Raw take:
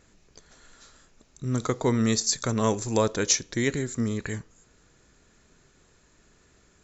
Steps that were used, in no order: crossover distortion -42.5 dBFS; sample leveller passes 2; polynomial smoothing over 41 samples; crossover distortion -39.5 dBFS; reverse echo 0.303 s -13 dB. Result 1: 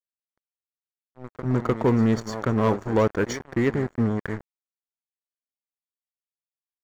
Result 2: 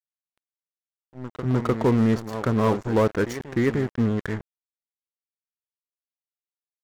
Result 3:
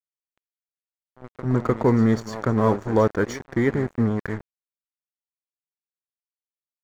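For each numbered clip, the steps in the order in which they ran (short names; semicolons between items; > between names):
first crossover distortion > reverse echo > second crossover distortion > polynomial smoothing > sample leveller; polynomial smoothing > first crossover distortion > reverse echo > sample leveller > second crossover distortion; reverse echo > second crossover distortion > sample leveller > polynomial smoothing > first crossover distortion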